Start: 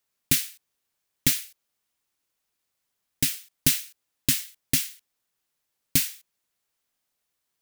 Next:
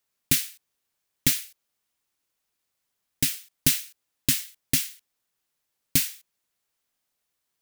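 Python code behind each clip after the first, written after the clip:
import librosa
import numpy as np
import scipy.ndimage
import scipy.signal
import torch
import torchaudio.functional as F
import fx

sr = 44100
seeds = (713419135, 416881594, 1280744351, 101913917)

y = x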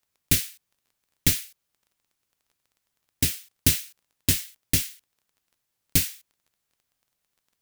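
y = fx.octave_divider(x, sr, octaves=1, level_db=3.0)
y = fx.dmg_crackle(y, sr, seeds[0], per_s=15.0, level_db=-49.0)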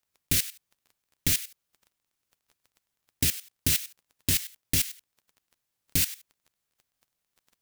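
y = fx.level_steps(x, sr, step_db=15)
y = y * librosa.db_to_amplitude(7.5)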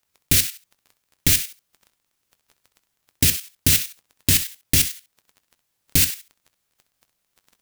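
y = fx.room_early_taps(x, sr, ms=(21, 65), db=(-15.5, -13.0))
y = y * librosa.db_to_amplitude(7.5)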